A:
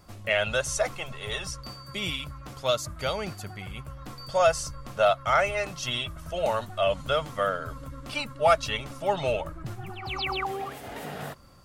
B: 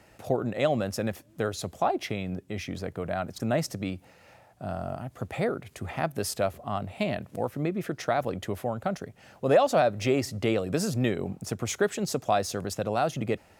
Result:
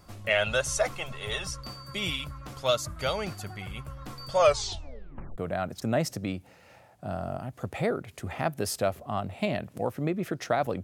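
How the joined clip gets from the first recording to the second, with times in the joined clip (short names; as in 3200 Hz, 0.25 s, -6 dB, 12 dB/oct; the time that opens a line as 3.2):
A
4.39 tape stop 0.99 s
5.38 switch to B from 2.96 s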